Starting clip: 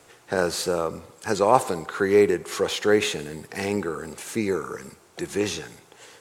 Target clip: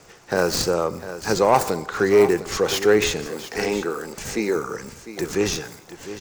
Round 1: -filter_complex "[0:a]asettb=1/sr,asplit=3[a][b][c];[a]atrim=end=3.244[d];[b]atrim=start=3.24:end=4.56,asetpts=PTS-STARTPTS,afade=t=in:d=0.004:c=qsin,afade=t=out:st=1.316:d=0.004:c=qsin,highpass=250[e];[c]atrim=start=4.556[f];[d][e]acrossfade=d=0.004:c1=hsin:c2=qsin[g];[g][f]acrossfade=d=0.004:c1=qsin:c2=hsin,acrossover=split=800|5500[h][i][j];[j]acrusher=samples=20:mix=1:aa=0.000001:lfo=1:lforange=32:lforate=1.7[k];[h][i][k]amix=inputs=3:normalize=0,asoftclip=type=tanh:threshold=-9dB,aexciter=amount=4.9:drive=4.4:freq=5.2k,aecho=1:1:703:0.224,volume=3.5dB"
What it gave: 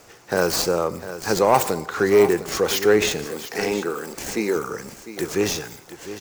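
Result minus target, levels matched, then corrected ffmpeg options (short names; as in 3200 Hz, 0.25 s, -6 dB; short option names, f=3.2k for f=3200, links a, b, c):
decimation with a swept rate: distortion -8 dB
-filter_complex "[0:a]asettb=1/sr,asplit=3[a][b][c];[a]atrim=end=3.244[d];[b]atrim=start=3.24:end=4.56,asetpts=PTS-STARTPTS,afade=t=in:d=0.004:c=qsin,afade=t=out:st=1.316:d=0.004:c=qsin,highpass=250[e];[c]atrim=start=4.556[f];[d][e]acrossfade=d=0.004:c1=hsin:c2=qsin[g];[g][f]acrossfade=d=0.004:c1=qsin:c2=hsin,acrossover=split=800|5500[h][i][j];[j]acrusher=samples=69:mix=1:aa=0.000001:lfo=1:lforange=110:lforate=1.7[k];[h][i][k]amix=inputs=3:normalize=0,asoftclip=type=tanh:threshold=-9dB,aexciter=amount=4.9:drive=4.4:freq=5.2k,aecho=1:1:703:0.224,volume=3.5dB"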